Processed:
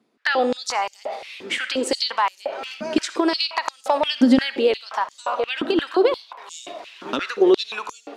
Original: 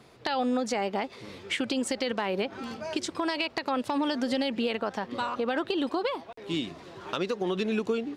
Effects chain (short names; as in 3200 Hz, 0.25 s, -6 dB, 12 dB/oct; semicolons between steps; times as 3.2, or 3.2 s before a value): gate with hold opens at -43 dBFS; digital reverb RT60 0.76 s, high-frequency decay 0.65×, pre-delay 25 ms, DRR 12 dB; stepped high-pass 5.7 Hz 240–6700 Hz; gain +5 dB